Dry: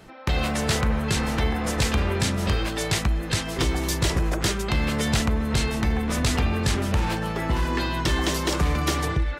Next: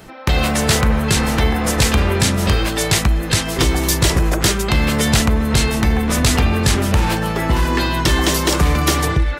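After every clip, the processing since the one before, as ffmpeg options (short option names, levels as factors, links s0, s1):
-af "highshelf=f=9800:g=8.5,volume=2.37"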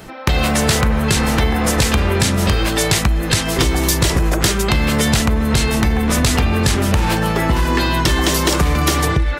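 -af "acompressor=threshold=0.178:ratio=6,volume=1.5"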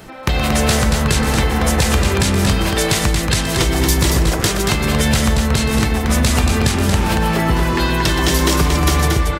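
-af "aecho=1:1:122.4|230.3:0.282|0.562,volume=0.841"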